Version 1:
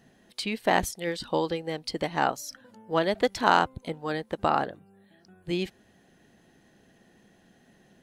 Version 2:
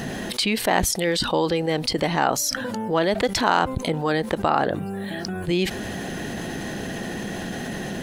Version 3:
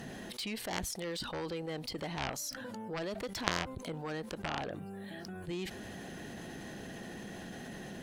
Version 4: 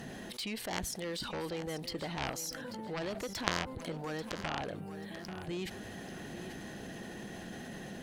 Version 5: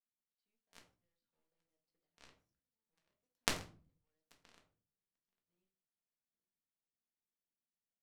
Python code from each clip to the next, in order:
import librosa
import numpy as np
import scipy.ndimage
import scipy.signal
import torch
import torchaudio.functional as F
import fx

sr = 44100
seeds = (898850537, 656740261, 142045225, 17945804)

y1 = fx.env_flatten(x, sr, amount_pct=70)
y2 = fx.cheby_harmonics(y1, sr, harmonics=(3,), levels_db=(-7,), full_scale_db=-3.0)
y2 = y2 * librosa.db_to_amplitude(-5.0)
y3 = fx.echo_feedback(y2, sr, ms=838, feedback_pct=26, wet_db=-12.0)
y4 = fx.power_curve(y3, sr, exponent=3.0)
y4 = fx.room_shoebox(y4, sr, seeds[0], volume_m3=250.0, walls='furnished', distance_m=1.7)
y4 = y4 * librosa.db_to_amplitude(1.0)